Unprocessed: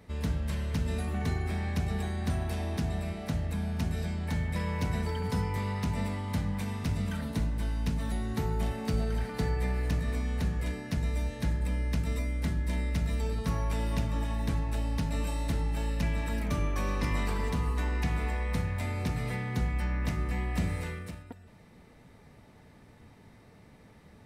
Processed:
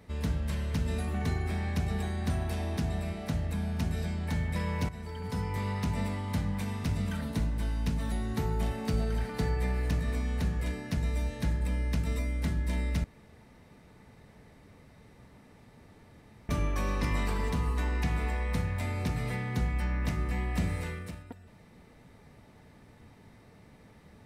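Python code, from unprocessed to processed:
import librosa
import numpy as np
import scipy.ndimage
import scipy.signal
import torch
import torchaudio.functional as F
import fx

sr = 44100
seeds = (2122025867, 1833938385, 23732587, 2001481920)

y = fx.edit(x, sr, fx.fade_in_from(start_s=4.89, length_s=0.78, floor_db=-14.0),
    fx.room_tone_fill(start_s=13.04, length_s=3.45), tone=tone)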